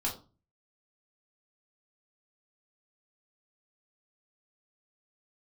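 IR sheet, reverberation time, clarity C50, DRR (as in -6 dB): 0.35 s, 9.5 dB, -3.0 dB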